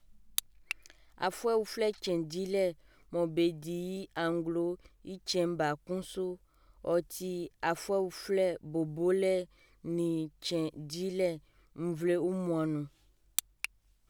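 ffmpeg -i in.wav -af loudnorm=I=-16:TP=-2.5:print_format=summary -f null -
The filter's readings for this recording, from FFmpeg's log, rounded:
Input Integrated:    -34.0 LUFS
Input True Peak:      -7.6 dBTP
Input LRA:             1.5 LU
Input Threshold:     -44.4 LUFS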